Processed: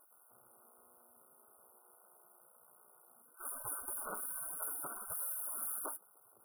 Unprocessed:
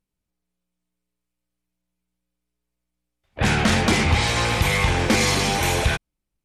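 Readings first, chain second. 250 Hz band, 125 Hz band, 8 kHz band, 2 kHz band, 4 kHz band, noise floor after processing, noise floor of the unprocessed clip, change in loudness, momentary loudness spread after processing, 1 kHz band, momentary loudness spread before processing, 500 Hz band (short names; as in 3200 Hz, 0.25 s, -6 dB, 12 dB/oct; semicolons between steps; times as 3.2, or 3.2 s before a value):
-37.0 dB, under -40 dB, -13.0 dB, -31.5 dB, under -40 dB, -66 dBFS, -82 dBFS, -19.5 dB, 6 LU, -24.0 dB, 4 LU, -28.5 dB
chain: power-law curve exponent 0.5; brick-wall FIR band-stop 1500–9200 Hz; spectral gate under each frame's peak -25 dB weak; gain -6.5 dB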